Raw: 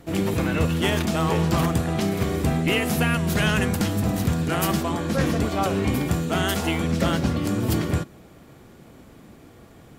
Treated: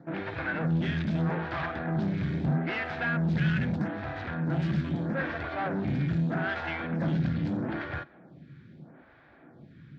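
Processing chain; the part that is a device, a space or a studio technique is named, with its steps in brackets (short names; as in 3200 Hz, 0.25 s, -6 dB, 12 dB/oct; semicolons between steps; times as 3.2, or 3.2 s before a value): vibe pedal into a guitar amplifier (photocell phaser 0.79 Hz; tube stage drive 26 dB, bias 0.45; speaker cabinet 91–3500 Hz, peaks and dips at 150 Hz +9 dB, 440 Hz -8 dB, 1100 Hz -5 dB, 1600 Hz +8 dB, 2900 Hz -7 dB)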